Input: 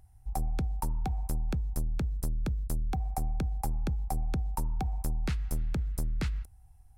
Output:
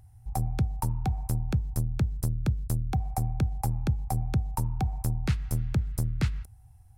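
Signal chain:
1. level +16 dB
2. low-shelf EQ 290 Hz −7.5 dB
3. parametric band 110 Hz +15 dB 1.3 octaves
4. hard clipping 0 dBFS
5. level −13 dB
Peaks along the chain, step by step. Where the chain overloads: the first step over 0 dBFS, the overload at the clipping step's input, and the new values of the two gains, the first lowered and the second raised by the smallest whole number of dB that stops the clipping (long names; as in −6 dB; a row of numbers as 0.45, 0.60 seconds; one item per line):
−4.5, −5.5, −2.5, −2.5, −15.5 dBFS
no step passes full scale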